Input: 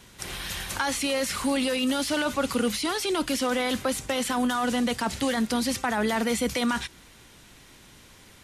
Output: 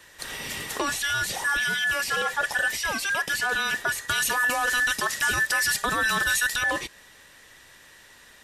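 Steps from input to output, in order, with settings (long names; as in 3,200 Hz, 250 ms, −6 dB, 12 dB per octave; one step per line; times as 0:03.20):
frequency inversion band by band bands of 2,000 Hz
0:04.08–0:06.56: high-shelf EQ 3,900 Hz +8 dB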